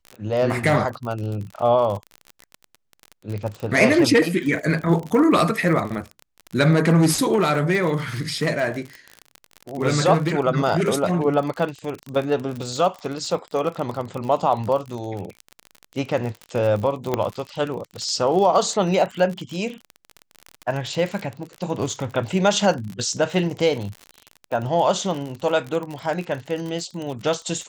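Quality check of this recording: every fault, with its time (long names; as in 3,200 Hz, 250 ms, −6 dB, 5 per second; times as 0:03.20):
surface crackle 42 per second −27 dBFS
0:17.14: click −8 dBFS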